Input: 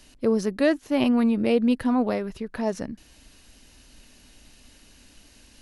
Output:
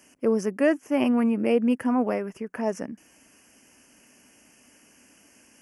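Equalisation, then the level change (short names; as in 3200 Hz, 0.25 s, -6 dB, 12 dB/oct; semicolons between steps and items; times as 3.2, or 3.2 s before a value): HPF 190 Hz 12 dB/oct; Butterworth band-stop 3900 Hz, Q 1.6; 0.0 dB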